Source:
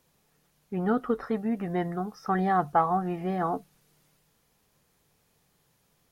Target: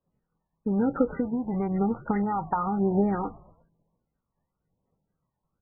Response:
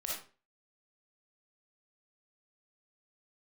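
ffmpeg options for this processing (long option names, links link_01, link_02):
-filter_complex "[0:a]lowpass=1100,agate=range=-33dB:threshold=-59dB:ratio=3:detection=peak,asplit=2[link_01][link_02];[link_02]alimiter=limit=-20.5dB:level=0:latency=1:release=25,volume=1.5dB[link_03];[link_01][link_03]amix=inputs=2:normalize=0,acompressor=threshold=-26dB:ratio=8,aphaser=in_gain=1:out_gain=1:delay=1.3:decay=0.53:speed=0.94:type=triangular,asplit=4[link_04][link_05][link_06][link_07];[link_05]adelay=132,afreqshift=-80,volume=-23dB[link_08];[link_06]adelay=264,afreqshift=-160,volume=-28.8dB[link_09];[link_07]adelay=396,afreqshift=-240,volume=-34.7dB[link_10];[link_04][link_08][link_09][link_10]amix=inputs=4:normalize=0,asplit=2[link_11][link_12];[1:a]atrim=start_sample=2205,atrim=end_sample=3528[link_13];[link_12][link_13]afir=irnorm=-1:irlink=0,volume=-23dB[link_14];[link_11][link_14]amix=inputs=2:normalize=0,asetrate=48000,aresample=44100,volume=1.5dB" -ar 16000 -c:a libmp3lame -b:a 8k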